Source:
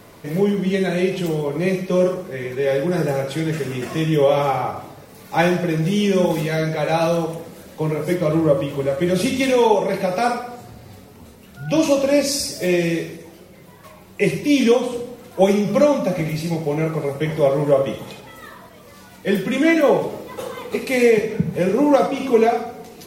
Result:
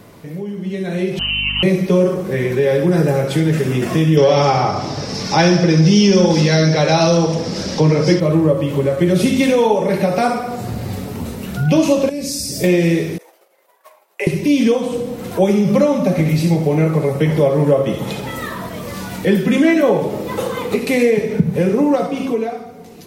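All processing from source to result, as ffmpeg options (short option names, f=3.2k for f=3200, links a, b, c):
-filter_complex "[0:a]asettb=1/sr,asplit=3[a][b][c];[a]atrim=end=1.194[d];[b]atrim=start=1.19:end=1.63,asetpts=PTS-STARTPTS,afade=t=in:d=0.004:c=qsin,afade=t=out:st=0.436:d=0.004:c=qsin,lowpass=f=2.7k:t=q:w=0.5098,lowpass=f=2.7k:t=q:w=0.6013,lowpass=f=2.7k:t=q:w=0.9,lowpass=f=2.7k:t=q:w=2.563,afreqshift=-3200,aeval=exprs='val(0)+0.0224*(sin(2*PI*50*n/s)+sin(2*PI*2*50*n/s)/2+sin(2*PI*3*50*n/s)/3+sin(2*PI*4*50*n/s)/4+sin(2*PI*5*50*n/s)/5)':c=same[e];[c]atrim=start=1.626[f];[d][e]acrossfade=d=0.004:c1=hsin:c2=qsin[g];[g][f]acrossfade=d=0.004:c1=qsin:c2=hsin,asettb=1/sr,asplit=3[h][i][j];[h]atrim=end=4.174[k];[i]atrim=start=4.17:end=8.2,asetpts=PTS-STARTPTS,afade=t=in:d=0.004:c=qsin,afade=t=out:st=4.026:d=0.004:c=qsin,acontrast=33,lowpass=f=5.3k:t=q:w=7.1[l];[j]atrim=start=8.196[m];[k][l]acrossfade=d=0.004:c1=hsin:c2=qsin[n];[n][m]acrossfade=d=0.004:c1=qsin:c2=hsin,asettb=1/sr,asplit=3[o][p][q];[o]atrim=end=12.094[r];[p]atrim=start=12.09:end=12.64,asetpts=PTS-STARTPTS,afade=t=in:d=0.004:c=qsin,afade=t=out:st=0.546:d=0.004:c=qsin,equalizer=f=1.1k:w=0.35:g=-12.5,acompressor=threshold=-32dB:ratio=2.5:attack=3.2:release=140:knee=1:detection=peak[s];[q]atrim=start=12.636[t];[r][s]acrossfade=d=0.004:c1=hsin:c2=qsin[u];[u][t]acrossfade=d=0.004:c1=qsin:c2=hsin,asettb=1/sr,asplit=3[v][w][x];[v]atrim=end=13.184[y];[w]atrim=start=13.18:end=14.27,asetpts=PTS-STARTPTS,afade=t=in:d=0.004:c=qsin,afade=t=out:st=1.086:d=0.004:c=qsin,agate=range=-33dB:threshold=-34dB:ratio=3:release=100:detection=peak,highpass=f=590:w=0.5412,highpass=f=590:w=1.3066,equalizer=f=4.1k:w=0.36:g=-7.5[z];[x]atrim=start=14.266[aa];[y][z]acrossfade=d=0.004:c1=hsin:c2=qsin[ab];[ab][aa]acrossfade=d=0.004:c1=qsin:c2=hsin,acompressor=threshold=-40dB:ratio=2,equalizer=f=160:w=0.56:g=5.5,dynaudnorm=f=200:g=11:m=16.5dB"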